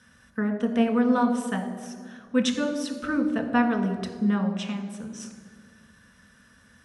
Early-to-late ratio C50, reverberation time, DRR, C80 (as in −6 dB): 8.5 dB, 1.8 s, 3.5 dB, 9.5 dB